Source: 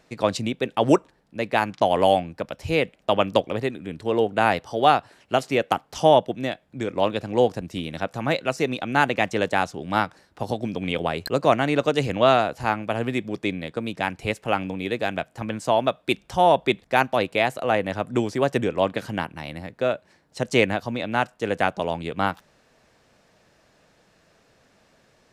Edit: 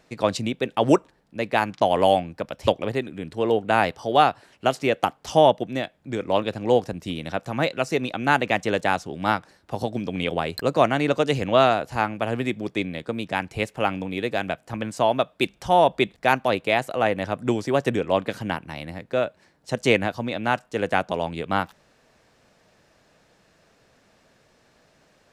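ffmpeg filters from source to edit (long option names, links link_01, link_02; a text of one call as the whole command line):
ffmpeg -i in.wav -filter_complex "[0:a]asplit=2[link_01][link_02];[link_01]atrim=end=2.672[link_03];[link_02]atrim=start=3.348[link_04];[link_03][link_04]acrossfade=duration=0.004:curve1=hsin:curve2=hsin" out.wav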